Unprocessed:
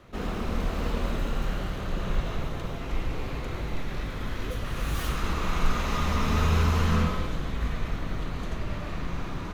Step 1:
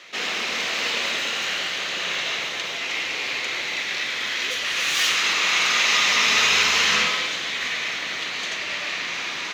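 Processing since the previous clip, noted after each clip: Bessel high-pass 620 Hz, order 2; high-order bell 3.6 kHz +14.5 dB 2.3 oct; trim +5 dB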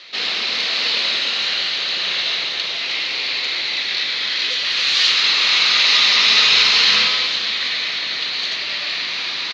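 resonant low-pass 4.3 kHz, resonance Q 4.8; delay 464 ms -13 dB; trim -1 dB

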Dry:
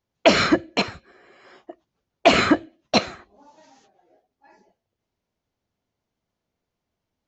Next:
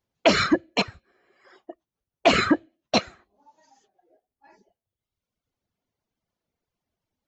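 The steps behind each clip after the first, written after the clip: reverb removal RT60 1.4 s; in parallel at +2 dB: peak limiter -10 dBFS, peak gain reduction 6.5 dB; on the sum: trim -7.5 dB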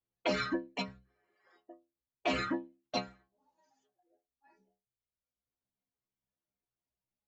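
treble shelf 5.8 kHz -7.5 dB; inharmonic resonator 62 Hz, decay 0.38 s, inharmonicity 0.008; trim -4 dB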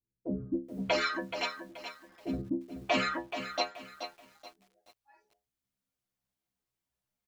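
bands offset in time lows, highs 640 ms, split 400 Hz; bit-crushed delay 428 ms, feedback 35%, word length 10-bit, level -9 dB; trim +4.5 dB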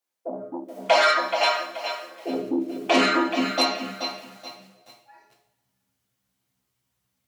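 two-slope reverb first 0.56 s, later 1.8 s, DRR -1 dB; sine folder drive 8 dB, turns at -10.5 dBFS; high-pass sweep 670 Hz -> 87 Hz, 1.70–5.61 s; trim -4 dB

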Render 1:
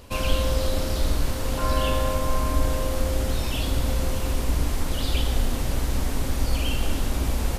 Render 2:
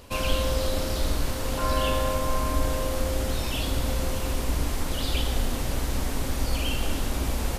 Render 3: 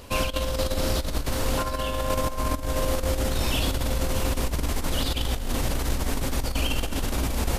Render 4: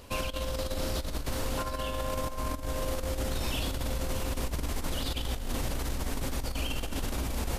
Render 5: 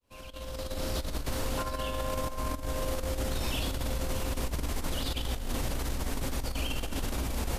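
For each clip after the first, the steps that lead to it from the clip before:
bass shelf 210 Hz -3.5 dB
compressor with a negative ratio -26 dBFS, ratio -0.5; trim +2 dB
peak limiter -16 dBFS, peak gain reduction 5.5 dB; trim -5.5 dB
fade-in on the opening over 0.98 s

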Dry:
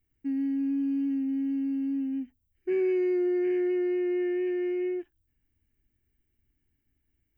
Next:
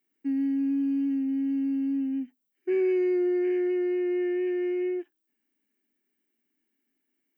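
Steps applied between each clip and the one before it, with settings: steep high-pass 210 Hz 36 dB/octave; in parallel at -2 dB: gain riding 2 s; on the sum: trim -4 dB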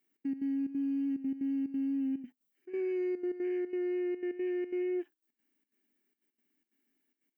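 peak limiter -28.5 dBFS, peak gain reduction 9.5 dB; trance gate "xx.x.xxx.xxx" 181 bpm -12 dB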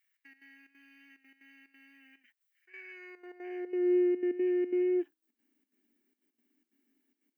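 high-pass sweep 1.8 kHz -> 250 Hz, 2.83–4.17 s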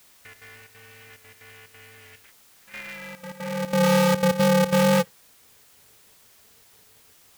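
added noise white -66 dBFS; in parallel at -8.5 dB: integer overflow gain 24.5 dB; on the sum: polarity switched at an audio rate 170 Hz; trim +7.5 dB

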